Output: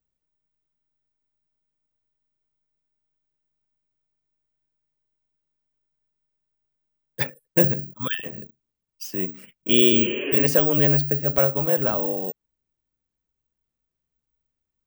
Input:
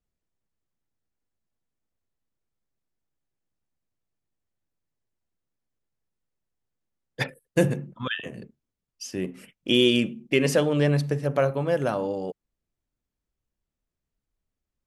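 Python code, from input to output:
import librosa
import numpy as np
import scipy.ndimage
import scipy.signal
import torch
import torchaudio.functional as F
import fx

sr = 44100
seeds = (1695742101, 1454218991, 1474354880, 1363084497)

y = (np.kron(scipy.signal.resample_poly(x, 1, 2), np.eye(2)[0]) * 2)[:len(x)]
y = fx.spec_repair(y, sr, seeds[0], start_s=9.94, length_s=0.44, low_hz=270.0, high_hz=3300.0, source='both')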